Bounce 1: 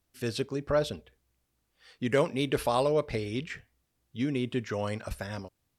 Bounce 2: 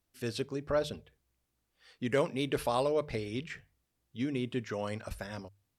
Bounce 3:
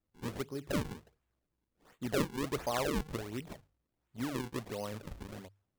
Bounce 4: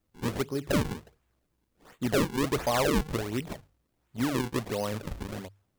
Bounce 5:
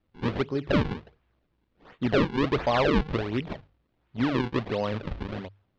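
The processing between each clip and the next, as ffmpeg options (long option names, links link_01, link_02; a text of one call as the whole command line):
ffmpeg -i in.wav -af "bandreject=frequency=50:width_type=h:width=6,bandreject=frequency=100:width_type=h:width=6,bandreject=frequency=150:width_type=h:width=6,volume=-3.5dB" out.wav
ffmpeg -i in.wav -af "acrusher=samples=40:mix=1:aa=0.000001:lfo=1:lforange=64:lforate=1.4,volume=-3.5dB" out.wav
ffmpeg -i in.wav -af "asoftclip=type=hard:threshold=-29dB,volume=8.5dB" out.wav
ffmpeg -i in.wav -af "lowpass=frequency=4000:width=0.5412,lowpass=frequency=4000:width=1.3066,volume=3dB" out.wav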